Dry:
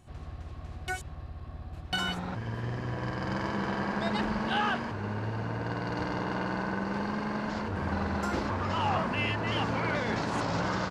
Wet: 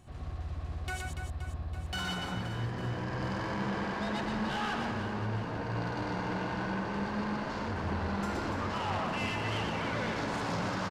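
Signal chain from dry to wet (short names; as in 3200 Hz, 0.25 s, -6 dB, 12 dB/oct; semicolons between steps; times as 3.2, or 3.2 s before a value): in parallel at -0.5 dB: limiter -25 dBFS, peak gain reduction 7.5 dB; on the sum: soft clip -26 dBFS, distortion -11 dB; reverse bouncing-ball echo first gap 0.12 s, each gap 1.4×, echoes 5; gain -5.5 dB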